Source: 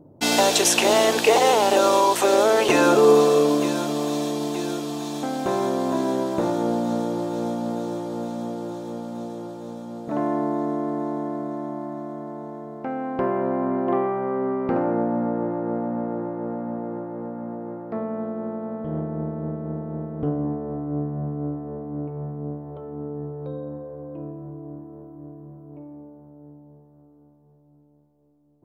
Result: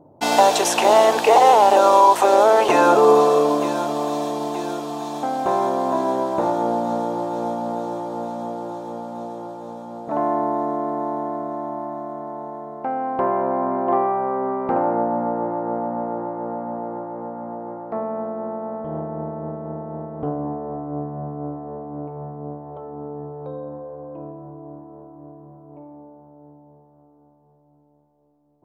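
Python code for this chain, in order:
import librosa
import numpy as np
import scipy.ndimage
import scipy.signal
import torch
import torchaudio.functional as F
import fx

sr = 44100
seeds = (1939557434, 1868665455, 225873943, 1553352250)

y = fx.peak_eq(x, sr, hz=850.0, db=12.5, octaves=1.4)
y = y * librosa.db_to_amplitude(-4.0)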